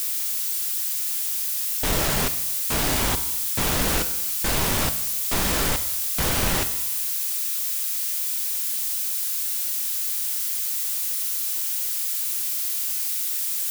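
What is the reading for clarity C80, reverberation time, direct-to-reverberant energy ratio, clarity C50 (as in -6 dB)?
14.5 dB, 0.90 s, 9.0 dB, 12.5 dB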